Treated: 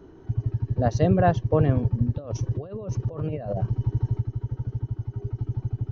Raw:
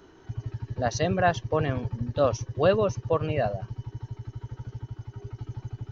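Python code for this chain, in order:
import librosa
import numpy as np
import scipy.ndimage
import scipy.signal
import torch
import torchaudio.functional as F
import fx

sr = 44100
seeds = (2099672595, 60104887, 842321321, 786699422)

y = fx.over_compress(x, sr, threshold_db=-34.0, ratio=-1.0, at=(2.16, 4.2), fade=0.02)
y = fx.tilt_shelf(y, sr, db=8.5, hz=840.0)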